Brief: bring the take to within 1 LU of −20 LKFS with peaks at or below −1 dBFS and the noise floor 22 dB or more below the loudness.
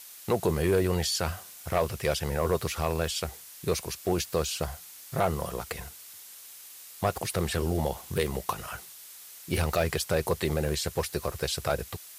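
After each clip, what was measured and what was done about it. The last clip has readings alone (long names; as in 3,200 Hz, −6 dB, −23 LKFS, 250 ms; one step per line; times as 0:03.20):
share of clipped samples 0.3%; peaks flattened at −16.5 dBFS; background noise floor −48 dBFS; target noise floor −52 dBFS; integrated loudness −30.0 LKFS; sample peak −16.5 dBFS; target loudness −20.0 LKFS
→ clipped peaks rebuilt −16.5 dBFS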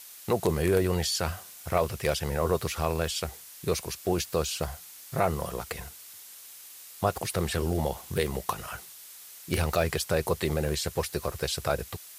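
share of clipped samples 0.0%; background noise floor −48 dBFS; target noise floor −52 dBFS
→ broadband denoise 6 dB, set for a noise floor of −48 dBFS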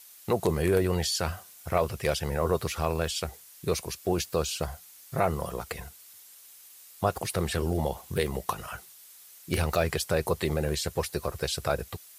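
background noise floor −52 dBFS; integrated loudness −29.5 LKFS; sample peak −8.5 dBFS; target loudness −20.0 LKFS
→ level +9.5 dB
brickwall limiter −1 dBFS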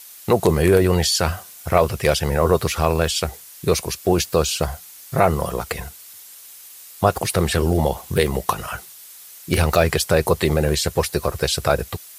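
integrated loudness −20.0 LKFS; sample peak −1.0 dBFS; background noise floor −42 dBFS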